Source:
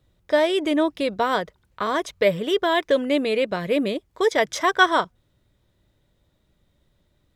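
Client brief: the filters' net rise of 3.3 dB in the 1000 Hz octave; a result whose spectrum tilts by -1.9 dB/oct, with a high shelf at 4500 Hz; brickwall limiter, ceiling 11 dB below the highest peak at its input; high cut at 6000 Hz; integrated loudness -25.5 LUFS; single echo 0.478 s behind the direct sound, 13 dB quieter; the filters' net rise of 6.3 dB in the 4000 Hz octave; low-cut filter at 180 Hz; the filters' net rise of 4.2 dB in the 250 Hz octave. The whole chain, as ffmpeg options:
-af "highpass=180,lowpass=6k,equalizer=f=250:t=o:g=6,equalizer=f=1k:t=o:g=3,equalizer=f=4k:t=o:g=4.5,highshelf=f=4.5k:g=8.5,alimiter=limit=-12dB:level=0:latency=1,aecho=1:1:478:0.224,volume=-3dB"

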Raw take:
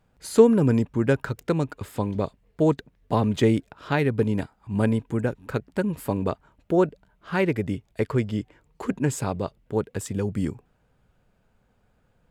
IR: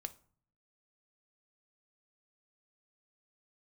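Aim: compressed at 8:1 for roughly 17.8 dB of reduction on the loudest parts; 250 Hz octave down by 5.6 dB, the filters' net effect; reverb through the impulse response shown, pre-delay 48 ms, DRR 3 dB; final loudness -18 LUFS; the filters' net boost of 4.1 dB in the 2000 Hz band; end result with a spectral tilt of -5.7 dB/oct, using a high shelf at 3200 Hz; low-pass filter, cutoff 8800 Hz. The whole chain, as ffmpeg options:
-filter_complex "[0:a]lowpass=8.8k,equalizer=f=250:t=o:g=-7.5,equalizer=f=2k:t=o:g=6.5,highshelf=f=3.2k:g=-3.5,acompressor=threshold=-30dB:ratio=8,asplit=2[a][b];[1:a]atrim=start_sample=2205,adelay=48[c];[b][c]afir=irnorm=-1:irlink=0,volume=0dB[d];[a][d]amix=inputs=2:normalize=0,volume=16.5dB"

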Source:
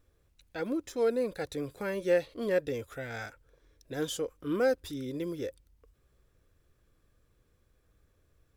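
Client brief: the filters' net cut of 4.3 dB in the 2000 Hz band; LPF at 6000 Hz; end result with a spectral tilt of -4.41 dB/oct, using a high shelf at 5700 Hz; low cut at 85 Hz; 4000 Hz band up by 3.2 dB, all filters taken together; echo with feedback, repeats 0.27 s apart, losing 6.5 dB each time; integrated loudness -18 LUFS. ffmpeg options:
-af "highpass=85,lowpass=6k,equalizer=f=2k:t=o:g=-7.5,equalizer=f=4k:t=o:g=6,highshelf=f=5.7k:g=4,aecho=1:1:270|540|810|1080|1350|1620:0.473|0.222|0.105|0.0491|0.0231|0.0109,volume=14.5dB"

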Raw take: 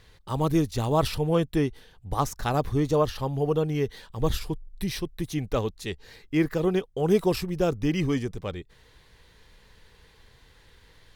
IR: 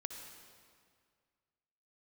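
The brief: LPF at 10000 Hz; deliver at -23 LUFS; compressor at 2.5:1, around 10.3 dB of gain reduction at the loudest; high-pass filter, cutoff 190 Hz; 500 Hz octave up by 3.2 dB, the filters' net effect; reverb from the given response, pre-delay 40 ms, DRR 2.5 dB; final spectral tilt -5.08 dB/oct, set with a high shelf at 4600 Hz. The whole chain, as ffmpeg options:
-filter_complex "[0:a]highpass=190,lowpass=10k,equalizer=f=500:t=o:g=4,highshelf=f=4.6k:g=7,acompressor=threshold=-31dB:ratio=2.5,asplit=2[a][b];[1:a]atrim=start_sample=2205,adelay=40[c];[b][c]afir=irnorm=-1:irlink=0,volume=-0.5dB[d];[a][d]amix=inputs=2:normalize=0,volume=8.5dB"

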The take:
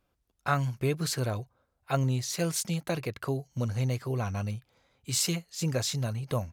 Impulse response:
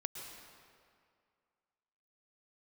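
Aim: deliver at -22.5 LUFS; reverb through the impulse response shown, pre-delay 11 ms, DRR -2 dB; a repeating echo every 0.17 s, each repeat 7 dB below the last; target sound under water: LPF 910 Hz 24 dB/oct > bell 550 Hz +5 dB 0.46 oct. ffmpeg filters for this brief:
-filter_complex "[0:a]aecho=1:1:170|340|510|680|850:0.447|0.201|0.0905|0.0407|0.0183,asplit=2[a][b];[1:a]atrim=start_sample=2205,adelay=11[c];[b][c]afir=irnorm=-1:irlink=0,volume=2.5dB[d];[a][d]amix=inputs=2:normalize=0,lowpass=f=910:w=0.5412,lowpass=f=910:w=1.3066,equalizer=f=550:t=o:w=0.46:g=5,volume=5.5dB"

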